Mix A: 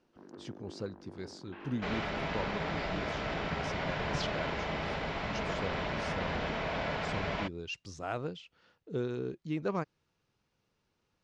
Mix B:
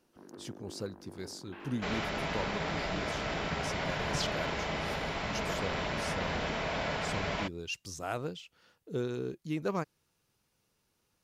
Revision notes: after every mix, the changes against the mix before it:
master: remove distance through air 120 m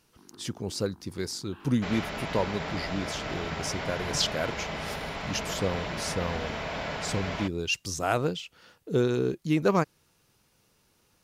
speech +9.5 dB; first sound: add static phaser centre 2.1 kHz, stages 6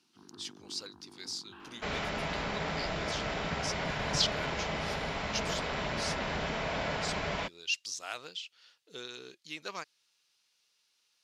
speech: add band-pass filter 4.1 kHz, Q 1.3

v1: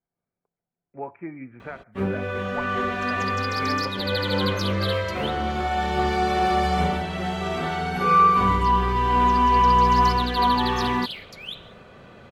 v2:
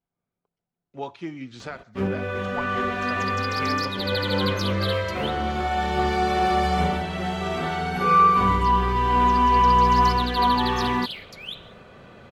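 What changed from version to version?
speech: remove rippled Chebyshev low-pass 2.4 kHz, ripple 3 dB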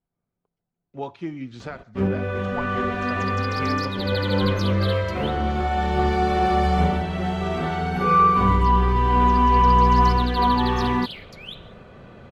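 master: add tilt EQ -1.5 dB/octave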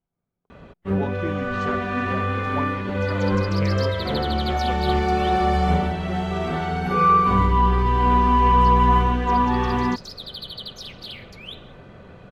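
first sound: entry -1.10 s

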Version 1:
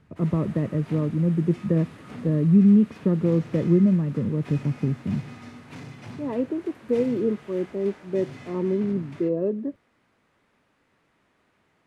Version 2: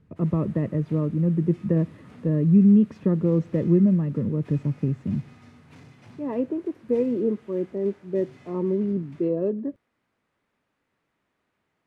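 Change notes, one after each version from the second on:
background -9.0 dB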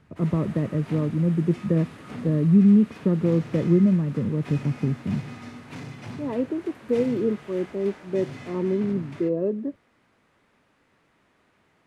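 background +11.5 dB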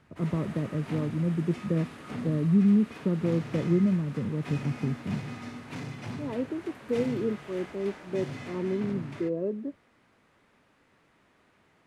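speech -5.5 dB

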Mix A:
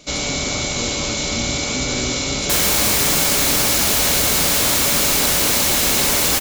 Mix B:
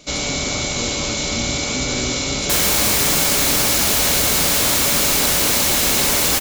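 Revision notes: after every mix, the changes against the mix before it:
no change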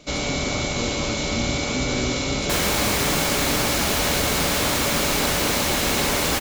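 speech: remove low-pass 11 kHz; master: add treble shelf 4.3 kHz -10.5 dB

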